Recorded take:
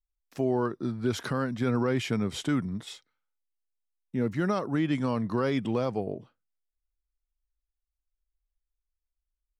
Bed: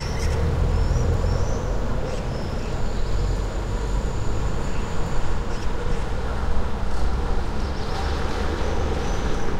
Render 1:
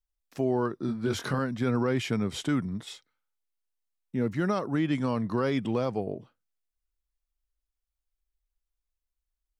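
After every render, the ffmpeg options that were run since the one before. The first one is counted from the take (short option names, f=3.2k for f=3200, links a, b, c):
-filter_complex "[0:a]asettb=1/sr,asplit=3[a][b][c];[a]atrim=end=0.864[d];[b]atrim=start=0.86:end=1.39,asetpts=PTS-STARTPTS,afade=t=in:d=0.004:c=qsin,afade=t=out:st=0.526:d=0.004:c=qsin,asplit=2[e][f];[f]adelay=22,volume=-5dB[g];[e][g]amix=inputs=2:normalize=0,atrim=end_sample=23373[h];[c]atrim=start=1.386[i];[d][h]acrossfade=d=0.004:c1=hsin:c2=qsin[j];[j][i]acrossfade=d=0.004:c1=qsin:c2=hsin"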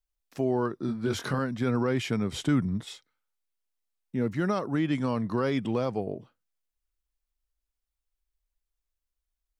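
-filter_complex "[0:a]asettb=1/sr,asplit=3[a][b][c];[a]atrim=end=2.324[d];[b]atrim=start=2.32:end=2.85,asetpts=PTS-STARTPTS,afade=t=in:d=0.004:c=qsin,afade=t=out:st=0.526:d=0.004:c=qsin,lowshelf=f=200:g=7[e];[c]atrim=start=2.846[f];[d][e]acrossfade=d=0.004:c1=hsin:c2=qsin[g];[g][f]acrossfade=d=0.004:c1=qsin:c2=hsin"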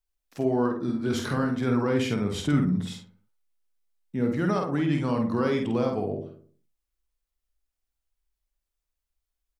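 -filter_complex "[0:a]asplit=2[a][b];[b]adelay=49,volume=-5dB[c];[a][c]amix=inputs=2:normalize=0,asplit=2[d][e];[e]adelay=61,lowpass=f=870:p=1,volume=-4.5dB,asplit=2[f][g];[g]adelay=61,lowpass=f=870:p=1,volume=0.53,asplit=2[h][i];[i]adelay=61,lowpass=f=870:p=1,volume=0.53,asplit=2[j][k];[k]adelay=61,lowpass=f=870:p=1,volume=0.53,asplit=2[l][m];[m]adelay=61,lowpass=f=870:p=1,volume=0.53,asplit=2[n][o];[o]adelay=61,lowpass=f=870:p=1,volume=0.53,asplit=2[p][q];[q]adelay=61,lowpass=f=870:p=1,volume=0.53[r];[d][f][h][j][l][n][p][r]amix=inputs=8:normalize=0"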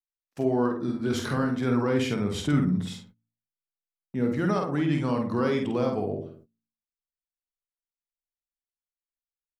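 -af "agate=range=-27dB:threshold=-51dB:ratio=16:detection=peak,bandreject=f=56.59:t=h:w=4,bandreject=f=113.18:t=h:w=4,bandreject=f=169.77:t=h:w=4,bandreject=f=226.36:t=h:w=4,bandreject=f=282.95:t=h:w=4"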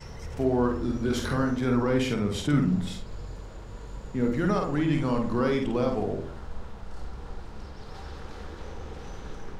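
-filter_complex "[1:a]volume=-15.5dB[a];[0:a][a]amix=inputs=2:normalize=0"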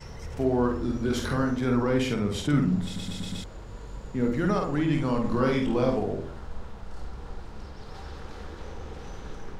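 -filter_complex "[0:a]asettb=1/sr,asplit=3[a][b][c];[a]atrim=end=5.224[d];[b]atrim=start=5.22:end=5.99,asetpts=PTS-STARTPTS,afade=t=in:d=0.004:c=qsin,afade=t=out:st=0.766:d=0.004:c=qsin,asplit=2[e][f];[f]adelay=23,volume=-3dB[g];[e][g]amix=inputs=2:normalize=0,atrim=end_sample=33957[h];[c]atrim=start=5.986[i];[d][h]acrossfade=d=0.004:c1=hsin:c2=qsin[j];[j][i]acrossfade=d=0.004:c1=qsin:c2=hsin,asplit=6[k][l][m][n][o][p];[k]atrim=end=2.962[q];[l]atrim=start=2.838:end=2.962[r];[m]atrim=start=2.838:end=2.962[s];[n]atrim=start=2.838:end=2.962[t];[o]atrim=start=2.838:end=2.962[u];[p]atrim=start=3.438[v];[q][r]acrossfade=d=0.004:c1=hsin:c2=hsin[w];[w][s]acrossfade=d=0.004:c1=hsin:c2=hsin[x];[x][t]acrossfade=d=0.004:c1=hsin:c2=hsin[y];[y][u]acrossfade=d=0.004:c1=hsin:c2=hsin[z];[z][v]acrossfade=d=0.004:c1=hsin:c2=hsin"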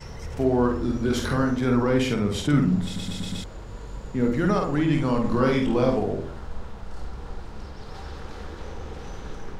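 -af "volume=3dB"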